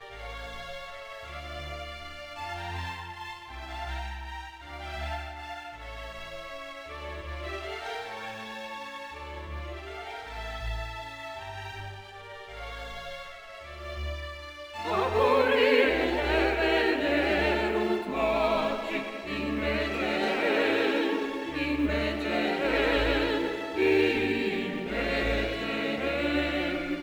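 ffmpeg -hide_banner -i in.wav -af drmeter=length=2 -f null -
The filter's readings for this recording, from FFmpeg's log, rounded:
Channel 1: DR: 10.4
Overall DR: 10.4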